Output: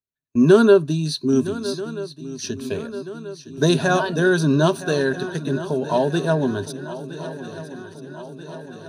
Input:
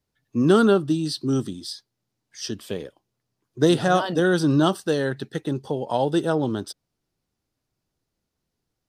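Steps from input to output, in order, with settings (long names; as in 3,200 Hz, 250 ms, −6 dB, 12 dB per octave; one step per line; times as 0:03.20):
noise gate −41 dBFS, range −23 dB
EQ curve with evenly spaced ripples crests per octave 1.5, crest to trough 12 dB
on a send: feedback echo with a long and a short gap by turns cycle 1,284 ms, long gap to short 3 to 1, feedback 60%, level −15 dB
on the sum: level +1 dB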